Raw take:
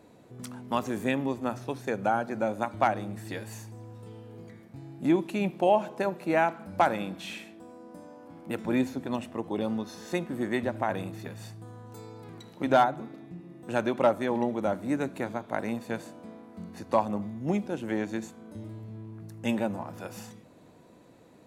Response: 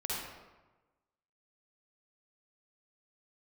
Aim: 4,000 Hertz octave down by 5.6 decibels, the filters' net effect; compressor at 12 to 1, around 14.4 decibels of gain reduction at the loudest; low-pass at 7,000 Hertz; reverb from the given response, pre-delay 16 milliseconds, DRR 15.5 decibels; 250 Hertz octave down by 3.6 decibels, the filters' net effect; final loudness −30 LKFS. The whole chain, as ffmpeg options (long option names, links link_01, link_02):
-filter_complex "[0:a]lowpass=7000,equalizer=frequency=250:width_type=o:gain=-4.5,equalizer=frequency=4000:width_type=o:gain=-7,acompressor=threshold=-32dB:ratio=12,asplit=2[link_01][link_02];[1:a]atrim=start_sample=2205,adelay=16[link_03];[link_02][link_03]afir=irnorm=-1:irlink=0,volume=-19.5dB[link_04];[link_01][link_04]amix=inputs=2:normalize=0,volume=10dB"